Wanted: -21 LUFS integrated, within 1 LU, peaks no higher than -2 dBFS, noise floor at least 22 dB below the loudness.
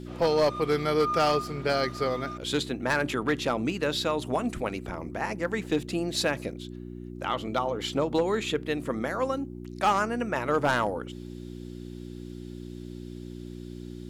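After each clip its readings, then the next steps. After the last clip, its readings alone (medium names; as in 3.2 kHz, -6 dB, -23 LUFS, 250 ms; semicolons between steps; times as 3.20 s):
clipped samples 0.4%; clipping level -17.0 dBFS; hum 60 Hz; highest harmonic 360 Hz; hum level -37 dBFS; loudness -28.0 LUFS; peak level -17.0 dBFS; loudness target -21.0 LUFS
-> clip repair -17 dBFS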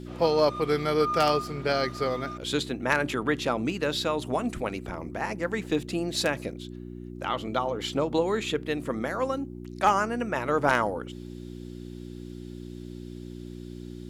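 clipped samples 0.0%; hum 60 Hz; highest harmonic 360 Hz; hum level -37 dBFS
-> de-hum 60 Hz, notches 6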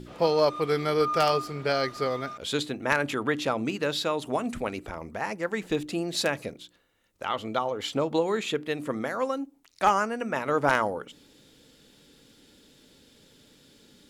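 hum not found; loudness -28.0 LUFS; peak level -8.0 dBFS; loudness target -21.0 LUFS
-> trim +7 dB; peak limiter -2 dBFS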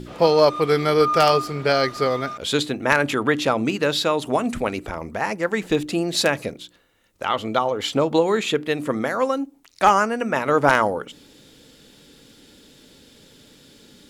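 loudness -21.0 LUFS; peak level -2.0 dBFS; noise floor -55 dBFS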